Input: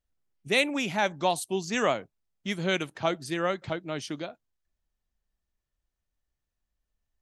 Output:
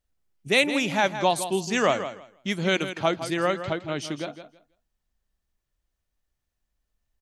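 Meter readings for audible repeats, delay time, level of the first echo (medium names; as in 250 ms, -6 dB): 2, 163 ms, -11.0 dB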